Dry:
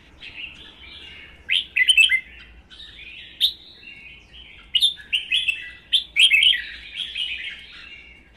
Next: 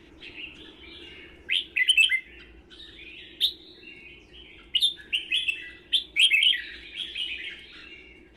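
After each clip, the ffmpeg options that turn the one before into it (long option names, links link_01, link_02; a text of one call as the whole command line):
ffmpeg -i in.wav -filter_complex "[0:a]acrossover=split=1300[link_01][link_02];[link_01]alimiter=level_in=11.5dB:limit=-24dB:level=0:latency=1:release=195,volume=-11.5dB[link_03];[link_03][link_02]amix=inputs=2:normalize=0,equalizer=frequency=350:width=2.3:gain=14,volume=-5dB" out.wav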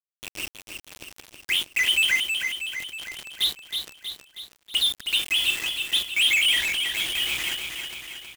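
ffmpeg -i in.wav -filter_complex "[0:a]acrusher=bits=5:mix=0:aa=0.000001,asoftclip=type=tanh:threshold=-23.5dB,asplit=2[link_01][link_02];[link_02]aecho=0:1:319|638|957|1276|1595|1914|2233:0.501|0.286|0.163|0.0928|0.0529|0.0302|0.0172[link_03];[link_01][link_03]amix=inputs=2:normalize=0,volume=6dB" out.wav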